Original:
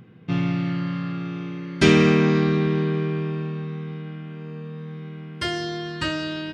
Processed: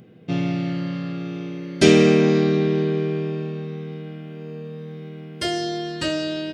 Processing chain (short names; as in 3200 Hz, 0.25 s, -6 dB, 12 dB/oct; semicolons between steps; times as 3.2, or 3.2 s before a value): EQ curve 100 Hz 0 dB, 650 Hz +11 dB, 1000 Hz -2 dB, 8200 Hz +11 dB; gain -4 dB